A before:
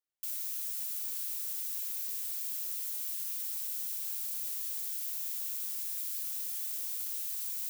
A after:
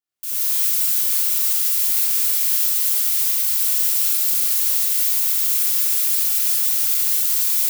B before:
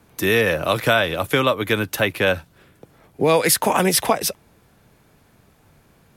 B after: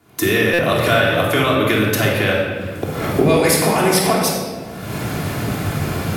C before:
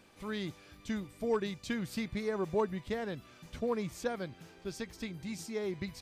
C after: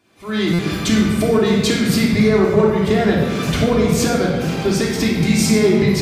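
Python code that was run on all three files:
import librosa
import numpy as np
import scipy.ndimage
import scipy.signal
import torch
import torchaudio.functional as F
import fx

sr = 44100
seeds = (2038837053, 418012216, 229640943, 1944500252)

y = fx.recorder_agc(x, sr, target_db=-8.5, rise_db_per_s=43.0, max_gain_db=30)
y = scipy.signal.sosfilt(scipy.signal.butter(2, 73.0, 'highpass', fs=sr, output='sos'), y)
y = fx.dynamic_eq(y, sr, hz=960.0, q=7.9, threshold_db=-41.0, ratio=4.0, max_db=-4)
y = fx.room_shoebox(y, sr, seeds[0], volume_m3=1800.0, walls='mixed', distance_m=3.2)
y = fx.buffer_glitch(y, sr, at_s=(0.53,), block=256, repeats=9)
y = y * 10.0 ** (-3.5 / 20.0)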